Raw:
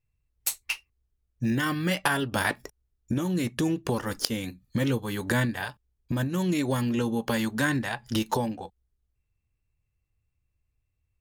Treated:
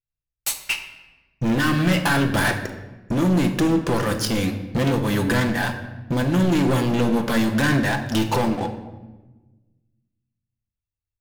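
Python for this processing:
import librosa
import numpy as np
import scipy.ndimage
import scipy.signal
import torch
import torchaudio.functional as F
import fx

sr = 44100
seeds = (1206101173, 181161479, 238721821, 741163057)

y = fx.high_shelf(x, sr, hz=5800.0, db=-5.5)
y = fx.leveller(y, sr, passes=5)
y = fx.room_shoebox(y, sr, seeds[0], volume_m3=750.0, walls='mixed', distance_m=0.77)
y = y * librosa.db_to_amplitude(-6.5)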